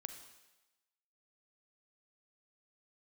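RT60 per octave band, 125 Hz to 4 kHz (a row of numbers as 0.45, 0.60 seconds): 0.85, 0.90, 1.0, 1.1, 1.1, 1.1 seconds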